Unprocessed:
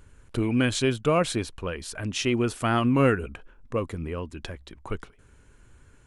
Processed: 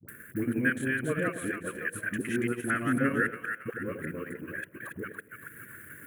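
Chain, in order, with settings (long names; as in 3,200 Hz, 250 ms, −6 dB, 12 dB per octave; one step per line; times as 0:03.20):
reversed piece by piece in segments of 114 ms
low-shelf EQ 170 Hz −5.5 dB
bit reduction 10 bits
notch filter 400 Hz, Q 13
in parallel at −2 dB: downward compressor, threshold −32 dBFS, peak gain reduction 14 dB
on the sum: drawn EQ curve 390 Hz 0 dB, 560 Hz −6 dB, 870 Hz −22 dB, 1,700 Hz +12 dB, 2,400 Hz −5 dB, 4,900 Hz −29 dB, 11,000 Hz +7 dB
upward compression, threshold −28 dBFS
high-pass filter 120 Hz 24 dB per octave
all-pass dispersion highs, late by 84 ms, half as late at 540 Hz
on a send: echo with a time of its own for lows and highs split 760 Hz, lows 83 ms, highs 281 ms, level −6 dB
on the sum: transient designer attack +1 dB, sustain −7 dB
level −5.5 dB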